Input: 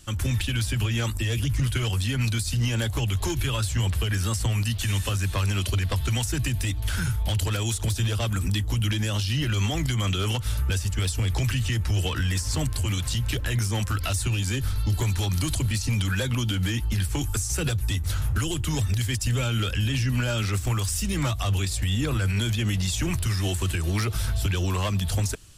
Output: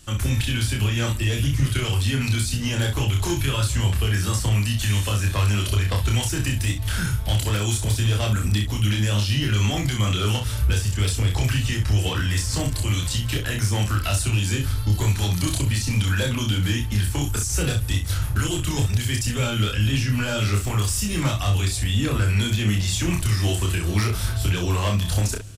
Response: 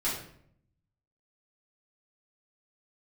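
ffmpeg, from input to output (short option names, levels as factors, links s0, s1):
-filter_complex "[0:a]aecho=1:1:29|63:0.708|0.422,asplit=2[s0][s1];[1:a]atrim=start_sample=2205,adelay=132[s2];[s1][s2]afir=irnorm=-1:irlink=0,volume=0.0355[s3];[s0][s3]amix=inputs=2:normalize=0,volume=1.12"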